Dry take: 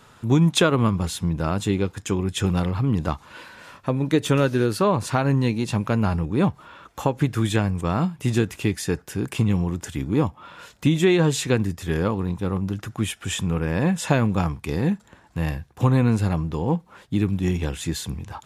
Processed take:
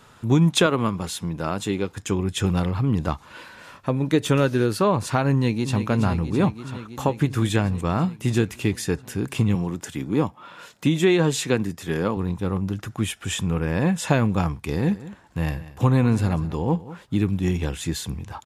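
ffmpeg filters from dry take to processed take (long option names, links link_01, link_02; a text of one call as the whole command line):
ffmpeg -i in.wav -filter_complex "[0:a]asettb=1/sr,asplit=3[link_01][link_02][link_03];[link_01]atrim=end=0.664[link_04];[link_02]atrim=start=0.66:end=1.91,asetpts=PTS-STARTPTS,afade=type=in:duration=0.004:curve=qsin,afade=type=out:start_time=1.246:duration=0.004:curve=qsin,highpass=frequency=220:poles=1[link_05];[link_03]atrim=start=1.906[link_06];[link_04][link_05]acrossfade=duration=0.004:curve1=hsin:curve2=qsin[link_07];[link_07][link_06]acrossfade=duration=0.004:curve1=qsin:curve2=hsin,asplit=2[link_08][link_09];[link_09]afade=type=in:start_time=5.32:duration=0.01,afade=type=out:start_time=5.78:duration=0.01,aecho=0:1:330|660|990|1320|1650|1980|2310|2640|2970|3300|3630|3960:0.354813|0.283851|0.227081|0.181664|0.145332|0.116265|0.0930122|0.0744098|0.0595278|0.0476222|0.0380978|0.0304782[link_10];[link_08][link_10]amix=inputs=2:normalize=0,asettb=1/sr,asplit=3[link_11][link_12][link_13];[link_11]atrim=end=9.554[link_14];[link_12]atrim=start=9.55:end=12.17,asetpts=PTS-STARTPTS,afade=type=in:duration=0.004:curve=qsin,afade=type=out:start_time=2.616:duration=0.004:curve=qsin,highpass=140[link_15];[link_13]atrim=start=12.166[link_16];[link_14][link_15]acrossfade=duration=0.004:curve1=hsin:curve2=qsin[link_17];[link_17][link_16]acrossfade=duration=0.004:curve1=qsin:curve2=hsin,asplit=3[link_18][link_19][link_20];[link_18]afade=type=out:start_time=14.82:duration=0.02[link_21];[link_19]aecho=1:1:193:0.15,afade=type=in:start_time=14.82:duration=0.02,afade=type=out:start_time=17.18:duration=0.02[link_22];[link_20]afade=type=in:start_time=17.18:duration=0.02[link_23];[link_21][link_22][link_23]amix=inputs=3:normalize=0" out.wav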